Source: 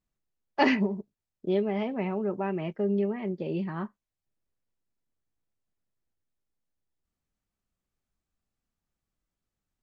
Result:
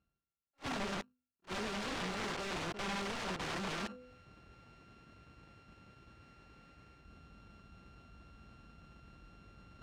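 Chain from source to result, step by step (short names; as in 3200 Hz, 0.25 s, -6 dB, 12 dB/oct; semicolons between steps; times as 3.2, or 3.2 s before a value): sample sorter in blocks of 32 samples; HPF 41 Hz 24 dB/oct; high shelf 3900 Hz -9.5 dB; notch 980 Hz, Q 15; de-hum 251 Hz, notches 2; sample leveller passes 5; reverse; upward compressor, threshold -25 dBFS; reverse; limiter -23 dBFS, peak gain reduction 11.5 dB; pre-echo 49 ms -21 dB; wrapped overs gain 32.5 dB; air absorption 99 m; attack slew limiter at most 450 dB/s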